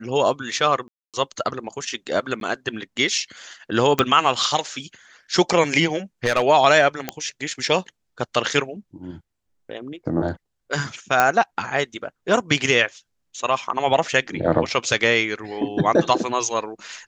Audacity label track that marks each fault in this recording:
0.880000	1.140000	dropout 257 ms
2.400000	2.410000	dropout 12 ms
3.990000	3.990000	pop -3 dBFS
6.240000	6.420000	clipped -12.5 dBFS
7.090000	7.090000	pop -8 dBFS
11.200000	11.200000	pop -3 dBFS

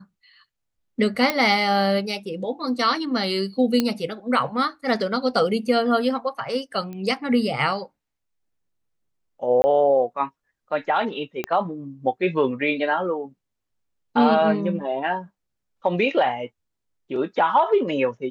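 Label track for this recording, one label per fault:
1.300000	1.300000	pop -7 dBFS
3.800000	3.800000	pop -7 dBFS
6.930000	6.930000	pop -24 dBFS
9.620000	9.640000	dropout 20 ms
11.440000	11.440000	pop -12 dBFS

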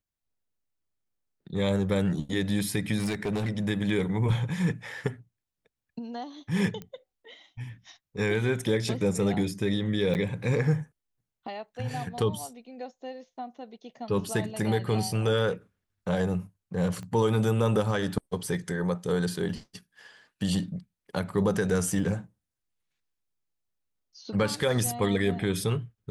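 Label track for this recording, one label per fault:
2.980000	3.500000	clipped -25 dBFS
6.820000	6.820000	pop -25 dBFS
10.140000	10.150000	dropout 9.3 ms
17.030000	17.030000	pop -29 dBFS
21.990000	21.990000	dropout 2.4 ms

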